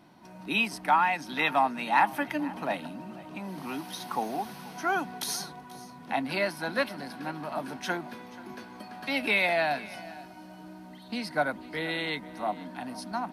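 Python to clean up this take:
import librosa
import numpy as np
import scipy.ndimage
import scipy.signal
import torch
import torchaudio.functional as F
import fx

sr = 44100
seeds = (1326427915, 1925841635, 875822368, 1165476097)

y = fx.fix_echo_inverse(x, sr, delay_ms=484, level_db=-19.5)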